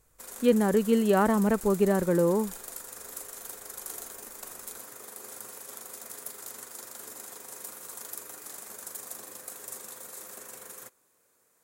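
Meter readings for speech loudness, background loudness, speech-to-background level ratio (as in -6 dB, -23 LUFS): -24.5 LUFS, -40.5 LUFS, 16.0 dB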